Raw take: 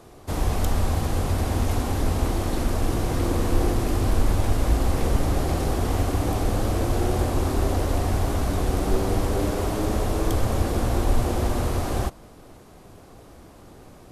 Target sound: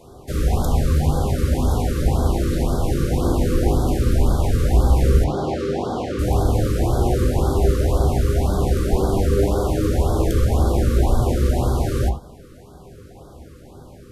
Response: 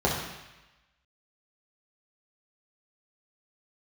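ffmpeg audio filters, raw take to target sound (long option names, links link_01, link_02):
-filter_complex "[0:a]asettb=1/sr,asplit=3[link_01][link_02][link_03];[link_01]atrim=end=5.244[link_04];[link_02]atrim=start=5.24:end=6.19,asetpts=PTS-STARTPTS,afade=type=in:duration=0.004:curve=qsin,afade=type=out:start_time=0.946:duration=0.004:curve=qsin,highpass=190,lowpass=4800[link_05];[link_03]atrim=start=6.186[link_06];[link_04][link_05]acrossfade=duration=0.004:curve1=hsin:curve2=qsin[link_07];[link_07][link_06]acrossfade=duration=0.004:curve1=qsin:curve2=hsin,asplit=2[link_08][link_09];[1:a]atrim=start_sample=2205,atrim=end_sample=4410,adelay=10[link_10];[link_09][link_10]afir=irnorm=-1:irlink=0,volume=-14.5dB[link_11];[link_08][link_11]amix=inputs=2:normalize=0,afftfilt=real='re*(1-between(b*sr/1024,760*pow(2300/760,0.5+0.5*sin(2*PI*1.9*pts/sr))/1.41,760*pow(2300/760,0.5+0.5*sin(2*PI*1.9*pts/sr))*1.41))':imag='im*(1-between(b*sr/1024,760*pow(2300/760,0.5+0.5*sin(2*PI*1.9*pts/sr))/1.41,760*pow(2300/760,0.5+0.5*sin(2*PI*1.9*pts/sr))*1.41))':win_size=1024:overlap=0.75"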